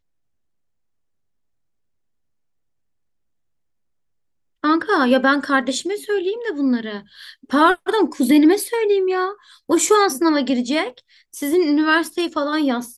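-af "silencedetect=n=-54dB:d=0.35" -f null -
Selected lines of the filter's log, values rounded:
silence_start: 0.00
silence_end: 4.63 | silence_duration: 4.63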